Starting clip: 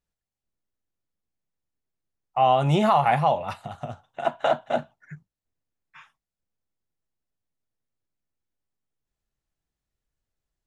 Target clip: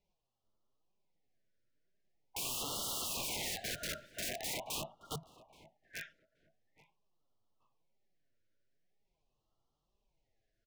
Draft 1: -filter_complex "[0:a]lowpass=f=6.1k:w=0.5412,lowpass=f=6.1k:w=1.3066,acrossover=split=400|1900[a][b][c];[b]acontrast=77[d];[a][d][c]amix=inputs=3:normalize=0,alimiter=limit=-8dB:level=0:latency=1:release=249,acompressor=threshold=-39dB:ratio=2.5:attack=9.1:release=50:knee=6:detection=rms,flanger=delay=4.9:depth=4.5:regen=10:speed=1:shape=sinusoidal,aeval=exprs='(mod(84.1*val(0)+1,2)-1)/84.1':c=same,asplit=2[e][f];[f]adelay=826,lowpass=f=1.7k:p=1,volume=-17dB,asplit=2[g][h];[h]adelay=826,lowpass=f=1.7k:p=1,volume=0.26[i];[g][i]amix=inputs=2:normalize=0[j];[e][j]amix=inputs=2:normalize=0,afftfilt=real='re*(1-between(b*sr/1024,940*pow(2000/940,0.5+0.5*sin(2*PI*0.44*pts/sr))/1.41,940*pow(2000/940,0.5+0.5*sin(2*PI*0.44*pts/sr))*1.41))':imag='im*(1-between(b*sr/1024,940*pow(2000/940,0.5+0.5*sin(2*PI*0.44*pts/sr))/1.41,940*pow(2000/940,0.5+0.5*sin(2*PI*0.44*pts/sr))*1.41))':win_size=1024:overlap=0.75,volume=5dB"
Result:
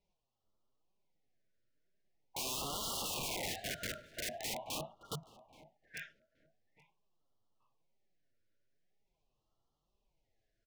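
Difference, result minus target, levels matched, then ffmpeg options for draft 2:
compressor: peak gain reduction +4.5 dB
-filter_complex "[0:a]lowpass=f=6.1k:w=0.5412,lowpass=f=6.1k:w=1.3066,acrossover=split=400|1900[a][b][c];[b]acontrast=77[d];[a][d][c]amix=inputs=3:normalize=0,alimiter=limit=-8dB:level=0:latency=1:release=249,acompressor=threshold=-31.5dB:ratio=2.5:attack=9.1:release=50:knee=6:detection=rms,flanger=delay=4.9:depth=4.5:regen=10:speed=1:shape=sinusoidal,aeval=exprs='(mod(84.1*val(0)+1,2)-1)/84.1':c=same,asplit=2[e][f];[f]adelay=826,lowpass=f=1.7k:p=1,volume=-17dB,asplit=2[g][h];[h]adelay=826,lowpass=f=1.7k:p=1,volume=0.26[i];[g][i]amix=inputs=2:normalize=0[j];[e][j]amix=inputs=2:normalize=0,afftfilt=real='re*(1-between(b*sr/1024,940*pow(2000/940,0.5+0.5*sin(2*PI*0.44*pts/sr))/1.41,940*pow(2000/940,0.5+0.5*sin(2*PI*0.44*pts/sr))*1.41))':imag='im*(1-between(b*sr/1024,940*pow(2000/940,0.5+0.5*sin(2*PI*0.44*pts/sr))/1.41,940*pow(2000/940,0.5+0.5*sin(2*PI*0.44*pts/sr))*1.41))':win_size=1024:overlap=0.75,volume=5dB"

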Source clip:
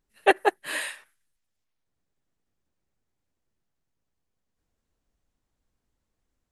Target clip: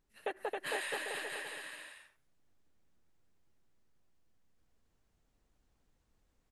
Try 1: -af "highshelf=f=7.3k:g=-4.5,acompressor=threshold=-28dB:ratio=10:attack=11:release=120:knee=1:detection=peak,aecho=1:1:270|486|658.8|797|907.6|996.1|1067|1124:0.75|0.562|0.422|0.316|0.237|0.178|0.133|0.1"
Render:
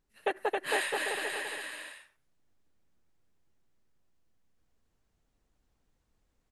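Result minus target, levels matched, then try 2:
compressor: peak gain reduction -8 dB
-af "highshelf=f=7.3k:g=-4.5,acompressor=threshold=-37dB:ratio=10:attack=11:release=120:knee=1:detection=peak,aecho=1:1:270|486|658.8|797|907.6|996.1|1067|1124:0.75|0.562|0.422|0.316|0.237|0.178|0.133|0.1"

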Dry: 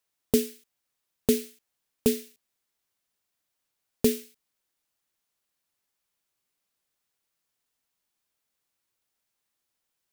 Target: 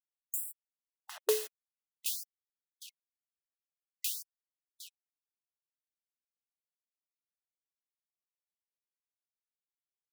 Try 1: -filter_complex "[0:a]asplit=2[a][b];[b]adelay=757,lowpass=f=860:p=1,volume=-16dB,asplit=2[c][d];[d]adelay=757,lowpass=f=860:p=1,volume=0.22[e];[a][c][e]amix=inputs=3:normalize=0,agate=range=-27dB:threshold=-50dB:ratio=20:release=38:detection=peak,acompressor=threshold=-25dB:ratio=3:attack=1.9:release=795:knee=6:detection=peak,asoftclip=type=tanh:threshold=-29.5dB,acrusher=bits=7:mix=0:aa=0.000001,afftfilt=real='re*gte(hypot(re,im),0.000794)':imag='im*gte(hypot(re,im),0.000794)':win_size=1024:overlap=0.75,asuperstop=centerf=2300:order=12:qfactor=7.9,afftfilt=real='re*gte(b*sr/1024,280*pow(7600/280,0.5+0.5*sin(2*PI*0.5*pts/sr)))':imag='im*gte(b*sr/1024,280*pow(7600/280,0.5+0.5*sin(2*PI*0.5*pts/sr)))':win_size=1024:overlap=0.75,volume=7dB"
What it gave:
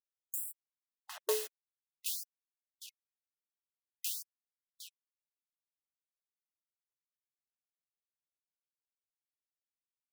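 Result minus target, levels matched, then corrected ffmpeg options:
soft clip: distortion +7 dB
-filter_complex "[0:a]asplit=2[a][b];[b]adelay=757,lowpass=f=860:p=1,volume=-16dB,asplit=2[c][d];[d]adelay=757,lowpass=f=860:p=1,volume=0.22[e];[a][c][e]amix=inputs=3:normalize=0,agate=range=-27dB:threshold=-50dB:ratio=20:release=38:detection=peak,acompressor=threshold=-25dB:ratio=3:attack=1.9:release=795:knee=6:detection=peak,asoftclip=type=tanh:threshold=-20.5dB,acrusher=bits=7:mix=0:aa=0.000001,afftfilt=real='re*gte(hypot(re,im),0.000794)':imag='im*gte(hypot(re,im),0.000794)':win_size=1024:overlap=0.75,asuperstop=centerf=2300:order=12:qfactor=7.9,afftfilt=real='re*gte(b*sr/1024,280*pow(7600/280,0.5+0.5*sin(2*PI*0.5*pts/sr)))':imag='im*gte(b*sr/1024,280*pow(7600/280,0.5+0.5*sin(2*PI*0.5*pts/sr)))':win_size=1024:overlap=0.75,volume=7dB"

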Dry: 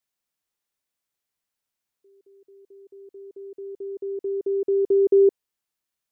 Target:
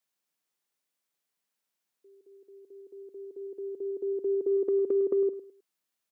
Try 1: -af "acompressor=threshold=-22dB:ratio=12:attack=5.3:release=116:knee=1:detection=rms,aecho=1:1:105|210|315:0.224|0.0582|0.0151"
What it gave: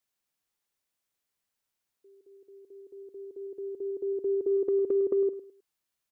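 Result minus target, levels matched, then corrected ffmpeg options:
125 Hz band +3.5 dB
-af "acompressor=threshold=-22dB:ratio=12:attack=5.3:release=116:knee=1:detection=rms,highpass=f=140:w=0.5412,highpass=f=140:w=1.3066,aecho=1:1:105|210|315:0.224|0.0582|0.0151"

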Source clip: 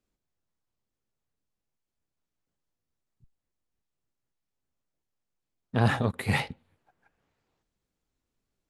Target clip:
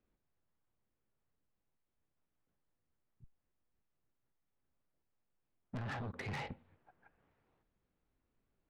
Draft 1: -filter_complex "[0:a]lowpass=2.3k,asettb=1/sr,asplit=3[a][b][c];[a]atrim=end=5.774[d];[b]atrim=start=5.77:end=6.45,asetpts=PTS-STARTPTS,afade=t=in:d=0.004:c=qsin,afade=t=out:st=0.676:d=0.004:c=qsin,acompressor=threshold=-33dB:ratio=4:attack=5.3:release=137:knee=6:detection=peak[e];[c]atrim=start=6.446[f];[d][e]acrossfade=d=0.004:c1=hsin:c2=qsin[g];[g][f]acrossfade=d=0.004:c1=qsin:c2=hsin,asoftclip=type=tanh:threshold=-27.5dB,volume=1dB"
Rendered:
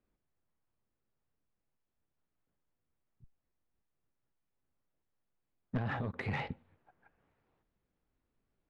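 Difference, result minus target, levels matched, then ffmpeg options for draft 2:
soft clip: distortion -6 dB
-filter_complex "[0:a]lowpass=2.3k,asettb=1/sr,asplit=3[a][b][c];[a]atrim=end=5.774[d];[b]atrim=start=5.77:end=6.45,asetpts=PTS-STARTPTS,afade=t=in:d=0.004:c=qsin,afade=t=out:st=0.676:d=0.004:c=qsin,acompressor=threshold=-33dB:ratio=4:attack=5.3:release=137:knee=6:detection=peak[e];[c]atrim=start=6.446[f];[d][e]acrossfade=d=0.004:c1=hsin:c2=qsin[g];[g][f]acrossfade=d=0.004:c1=qsin:c2=hsin,asoftclip=type=tanh:threshold=-39dB,volume=1dB"

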